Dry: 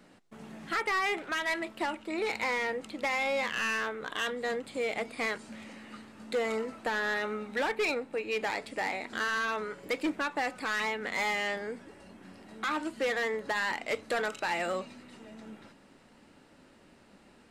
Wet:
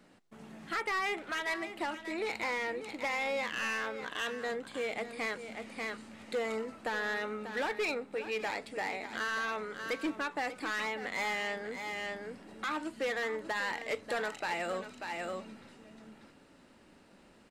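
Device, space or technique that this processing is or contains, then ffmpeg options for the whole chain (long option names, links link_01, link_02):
ducked delay: -filter_complex "[0:a]asplit=3[link_01][link_02][link_03];[link_02]adelay=590,volume=-2.5dB[link_04];[link_03]apad=whole_len=797983[link_05];[link_04][link_05]sidechaincompress=threshold=-39dB:ratio=8:attack=7.2:release=476[link_06];[link_01][link_06]amix=inputs=2:normalize=0,volume=-3.5dB"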